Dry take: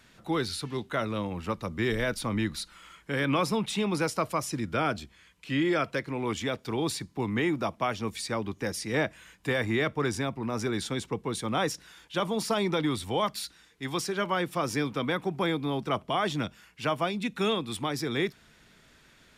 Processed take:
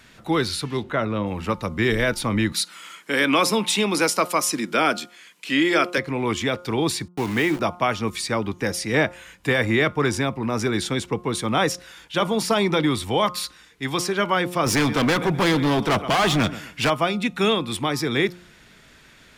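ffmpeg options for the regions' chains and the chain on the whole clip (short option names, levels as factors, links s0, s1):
-filter_complex "[0:a]asettb=1/sr,asplit=3[s0][s1][s2];[s0]atrim=end=0.834[s3];[s1]atrim=start=0.83:end=1.27,asetpts=PTS-STARTPTS,afade=t=in:d=0.004:c=qsin,afade=t=out:st=0.436:d=0.004:c=qsin,lowpass=f=1800:p=1,acompressor=mode=upward:threshold=0.0126:ratio=2.5:attack=3.2:release=140:knee=2.83:detection=peak[s4];[s2]atrim=start=1.266[s5];[s3][s4]acrossfade=d=0.004:c1=hsin:c2=qsin[s6];[s6][s5]acrossfade=d=0.004:c1=qsin:c2=hsin,asettb=1/sr,asplit=3[s7][s8][s9];[s7]atrim=end=2.524[s10];[s8]atrim=start=2.52:end=5.98,asetpts=PTS-STARTPTS,afade=t=in:d=0.004:c=qsin,afade=t=out:st=3.456:d=0.004:c=qsin,highpass=f=200:w=0.5412,highpass=f=200:w=1.3066,highshelf=f=3400:g=7.5[s11];[s9]atrim=start=5.976[s12];[s10][s11]acrossfade=d=0.004:c1=hsin:c2=qsin[s13];[s13][s12]acrossfade=d=0.004:c1=qsin:c2=hsin,asettb=1/sr,asplit=3[s14][s15][s16];[s14]atrim=end=7.084[s17];[s15]atrim=start=7.08:end=7.6,asetpts=PTS-STARTPTS,afade=t=in:d=0.004:c=qsin,afade=t=out:st=0.516:d=0.004:c=qsin,lowshelf=f=200:g=-4.5,aeval=exprs='val(0)*gte(abs(val(0)),0.0133)':c=same[s18];[s16]atrim=start=7.596[s19];[s17][s18]acrossfade=d=0.004:c1=hsin:c2=qsin[s20];[s20][s19]acrossfade=d=0.004:c1=qsin:c2=hsin,asettb=1/sr,asplit=3[s21][s22][s23];[s21]atrim=end=14.664[s24];[s22]atrim=start=14.66:end=16.9,asetpts=PTS-STARTPTS,afade=t=in:d=0.004:c=qsin,afade=t=out:st=2.236:d=0.004:c=qsin,aecho=1:1:126|252|378:0.112|0.0337|0.0101,atrim=end_sample=98784,acontrast=90,asoftclip=type=hard:threshold=0.0631[s25];[s23]atrim=start=16.896[s26];[s24][s25]acrossfade=d=0.004:c1=hsin:c2=qsin[s27];[s27][s26]acrossfade=d=0.004:c1=qsin:c2=hsin,equalizer=f=2200:w=1.5:g=2,bandreject=f=177.5:t=h:w=4,bandreject=f=355:t=h:w=4,bandreject=f=532.5:t=h:w=4,bandreject=f=710:t=h:w=4,bandreject=f=887.5:t=h:w=4,bandreject=f=1065:t=h:w=4,bandreject=f=1242.5:t=h:w=4,bandreject=f=1420:t=h:w=4,volume=2.24"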